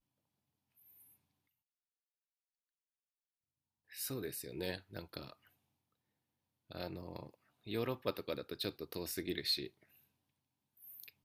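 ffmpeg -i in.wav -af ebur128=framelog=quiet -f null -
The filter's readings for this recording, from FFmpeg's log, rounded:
Integrated loudness:
  I:         -41.5 LUFS
  Threshold: -52.8 LUFS
Loudness range:
  LRA:         8.2 LU
  Threshold: -64.3 LUFS
  LRA low:   -48.9 LUFS
  LRA high:  -40.7 LUFS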